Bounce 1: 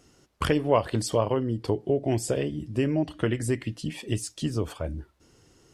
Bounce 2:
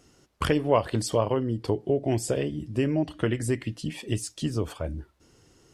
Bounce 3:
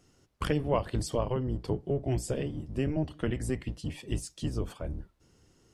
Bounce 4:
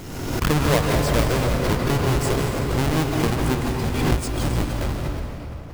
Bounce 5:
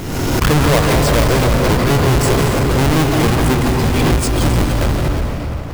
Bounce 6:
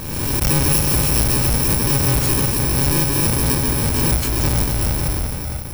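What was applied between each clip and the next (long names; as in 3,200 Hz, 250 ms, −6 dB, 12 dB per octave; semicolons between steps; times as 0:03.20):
no processing that can be heard
sub-octave generator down 1 octave, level +1 dB; level −6.5 dB
each half-wave held at its own peak; on a send at −1 dB: convolution reverb RT60 3.4 s, pre-delay 139 ms; on the sum: background raised ahead of every attack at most 39 dB per second; level +3 dB
leveller curve on the samples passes 3
samples in bit-reversed order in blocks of 64 samples; level −4 dB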